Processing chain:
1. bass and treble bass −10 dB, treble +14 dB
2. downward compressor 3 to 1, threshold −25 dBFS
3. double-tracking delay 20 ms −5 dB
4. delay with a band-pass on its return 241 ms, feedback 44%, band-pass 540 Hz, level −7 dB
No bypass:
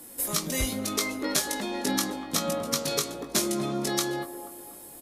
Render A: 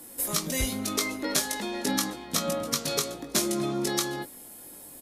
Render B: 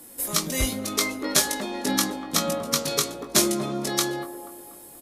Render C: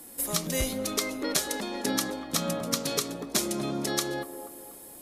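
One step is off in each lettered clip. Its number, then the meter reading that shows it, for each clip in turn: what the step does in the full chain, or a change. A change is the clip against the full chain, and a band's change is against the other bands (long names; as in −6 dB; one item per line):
4, echo-to-direct ratio −11.0 dB to none audible
2, change in crest factor +1.5 dB
3, change in integrated loudness −1.0 LU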